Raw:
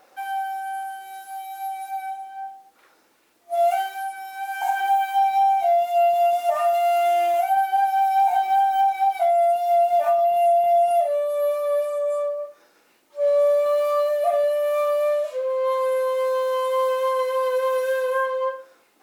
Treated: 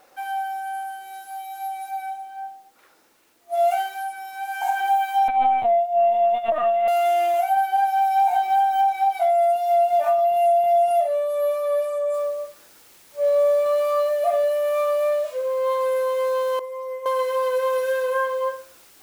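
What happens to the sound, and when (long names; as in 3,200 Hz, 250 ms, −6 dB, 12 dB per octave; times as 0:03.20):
0:05.28–0:06.88: linear-prediction vocoder at 8 kHz pitch kept
0:12.14: noise floor change −67 dB −52 dB
0:16.59–0:17.06: stiff-string resonator 250 Hz, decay 0.27 s, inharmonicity 0.008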